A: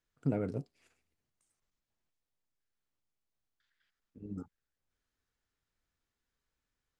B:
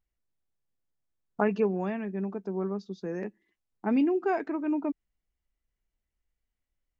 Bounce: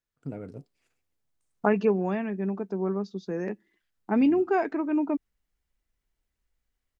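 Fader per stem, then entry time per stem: -5.0 dB, +3.0 dB; 0.00 s, 0.25 s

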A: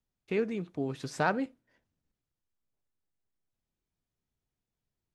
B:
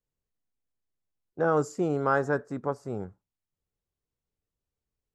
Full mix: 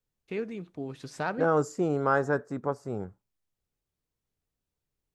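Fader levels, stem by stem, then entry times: -3.5 dB, 0.0 dB; 0.00 s, 0.00 s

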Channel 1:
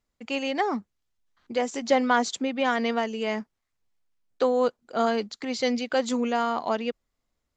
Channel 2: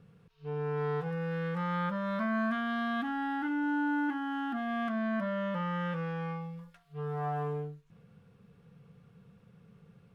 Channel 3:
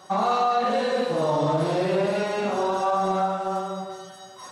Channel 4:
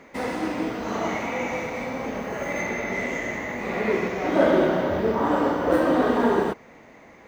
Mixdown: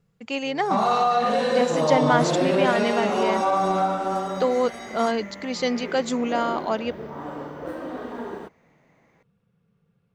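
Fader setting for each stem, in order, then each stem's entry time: +1.0 dB, -9.5 dB, +1.5 dB, -13.0 dB; 0.00 s, 0.00 s, 0.60 s, 1.95 s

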